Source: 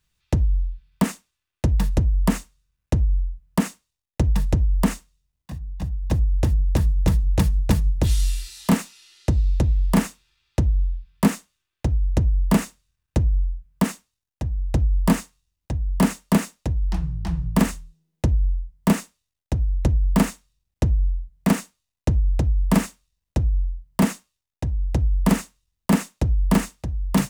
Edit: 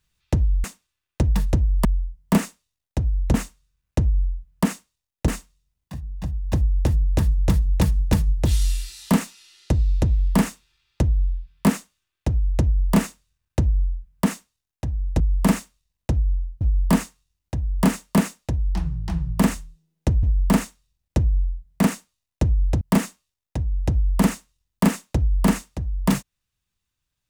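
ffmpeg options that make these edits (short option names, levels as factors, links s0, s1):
-filter_complex "[0:a]asplit=9[s0][s1][s2][s3][s4][s5][s6][s7][s8];[s0]atrim=end=0.642[s9];[s1]atrim=start=1.078:end=2.292[s10];[s2]atrim=start=18.398:end=19.892[s11];[s3]atrim=start=2.288:end=4.232[s12];[s4]atrim=start=4.858:end=14.782[s13];[s5]atrim=start=22.468:end=23.882[s14];[s6]atrim=start=14.778:end=18.402[s15];[s7]atrim=start=19.888:end=22.472[s16];[s8]atrim=start=23.878[s17];[s9][s10]acrossfade=d=0.004:c1=hsin:c2=hsin[s18];[s18][s11]acrossfade=d=0.004:c1=hsin:c2=hsin[s19];[s19][s12]acrossfade=d=0.004:c1=hsin:c2=hsin[s20];[s20][s13]acrossfade=d=0.004:c1=hsin:c2=hsin[s21];[s21][s14]acrossfade=d=0.004:c1=hsin:c2=hsin[s22];[s22][s15]acrossfade=d=0.004:c1=hsin:c2=hsin[s23];[s23][s16]acrossfade=d=0.004:c1=hsin:c2=hsin[s24];[s24][s17]acrossfade=d=0.004:c1=hsin:c2=hsin"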